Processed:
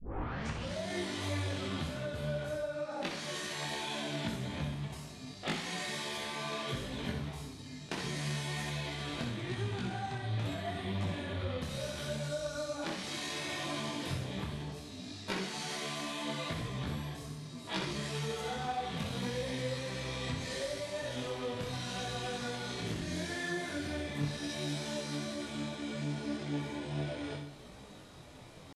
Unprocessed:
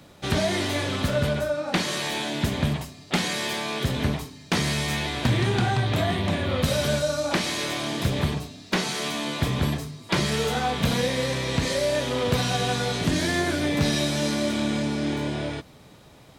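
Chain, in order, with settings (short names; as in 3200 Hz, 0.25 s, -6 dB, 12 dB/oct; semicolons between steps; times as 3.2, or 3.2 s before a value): tape start at the beginning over 0.45 s; steep low-pass 12000 Hz 48 dB/oct; compressor 6:1, threshold -34 dBFS, peak gain reduction 15.5 dB; tempo 0.57×; flutter echo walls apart 10.7 m, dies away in 0.62 s; detuned doubles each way 25 cents; gain +1.5 dB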